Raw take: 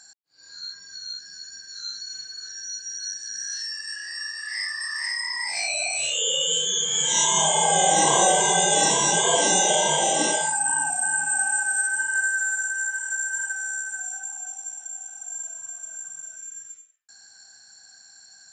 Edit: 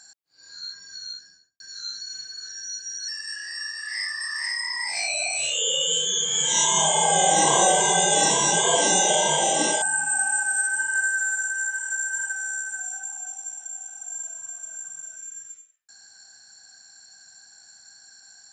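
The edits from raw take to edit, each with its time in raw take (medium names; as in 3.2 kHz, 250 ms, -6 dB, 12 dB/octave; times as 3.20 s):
1.04–1.60 s: studio fade out
3.08–3.68 s: delete
10.42–11.02 s: delete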